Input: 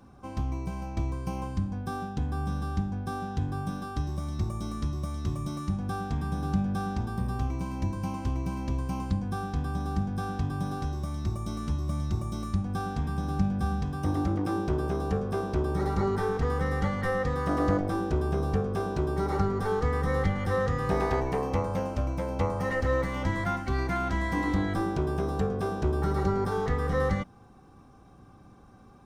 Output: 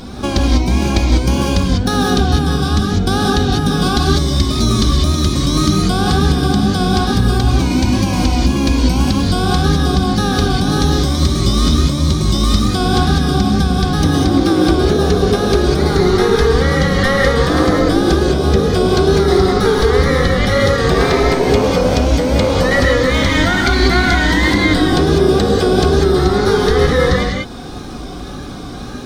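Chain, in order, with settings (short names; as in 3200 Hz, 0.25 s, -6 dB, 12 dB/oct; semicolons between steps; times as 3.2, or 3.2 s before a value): wow and flutter 120 cents; notch 2700 Hz, Q 15; compressor, threshold -36 dBFS, peak gain reduction 15 dB; graphic EQ 125/1000/4000 Hz -8/-8/+11 dB; non-linear reverb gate 0.22 s rising, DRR -1 dB; maximiser +26.5 dB; gain -1 dB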